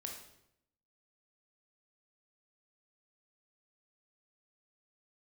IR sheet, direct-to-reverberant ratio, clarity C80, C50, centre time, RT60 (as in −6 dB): 1.0 dB, 8.0 dB, 4.5 dB, 33 ms, 0.80 s